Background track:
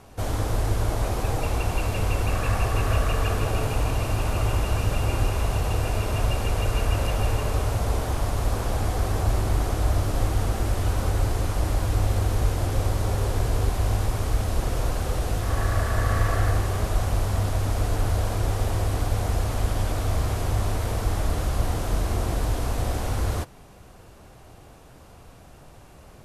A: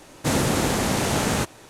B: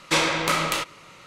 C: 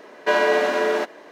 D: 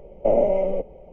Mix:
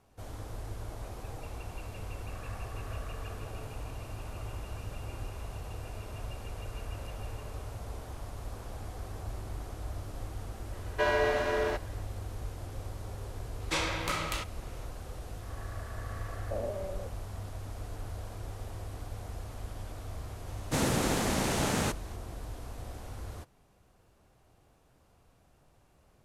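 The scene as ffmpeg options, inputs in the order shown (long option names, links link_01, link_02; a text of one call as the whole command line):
ffmpeg -i bed.wav -i cue0.wav -i cue1.wav -i cue2.wav -i cue3.wav -filter_complex "[0:a]volume=-16.5dB[link_01];[3:a]atrim=end=1.31,asetpts=PTS-STARTPTS,volume=-9dB,afade=type=in:duration=0.004:curve=hsin,afade=type=out:start_time=1.306:duration=0.004:curve=hsin,adelay=10720[link_02];[2:a]atrim=end=1.26,asetpts=PTS-STARTPTS,volume=-10.5dB,afade=type=in:duration=0.004:curve=hsin,afade=type=out:start_time=1.256:duration=0.004:curve=hsin,adelay=13600[link_03];[4:a]atrim=end=1.12,asetpts=PTS-STARTPTS,volume=-17.5dB,afade=type=in:duration=0.004:curve=hsin,afade=type=out:start_time=1.116:duration=0.004:curve=hsin,adelay=16260[link_04];[1:a]atrim=end=1.69,asetpts=PTS-STARTPTS,volume=-7dB,afade=type=in:duration=0.004:curve=hsin,afade=type=out:start_time=1.686:duration=0.004:curve=hsin,adelay=20470[link_05];[link_01][link_02][link_03][link_04][link_05]amix=inputs=5:normalize=0" out.wav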